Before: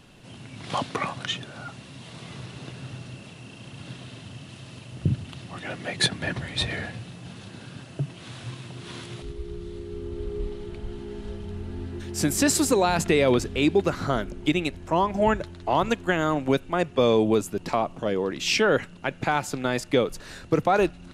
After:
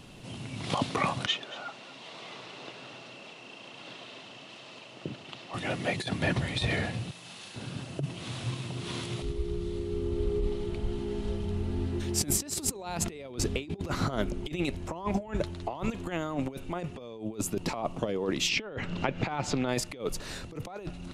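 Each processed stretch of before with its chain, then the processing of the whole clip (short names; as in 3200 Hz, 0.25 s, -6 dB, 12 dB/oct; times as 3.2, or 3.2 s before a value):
1.26–5.54 HPF 470 Hz + air absorption 100 m + echo 0.231 s -16 dB
7.11–7.56 HPF 1400 Hz 6 dB/oct + doubler 41 ms -4 dB
18.49–19.69 air absorption 130 m + upward compressor, threshold -25 dBFS + mismatched tape noise reduction encoder only
whole clip: bell 1600 Hz -5.5 dB 0.44 oct; negative-ratio compressor -28 dBFS, ratio -0.5; gain -1.5 dB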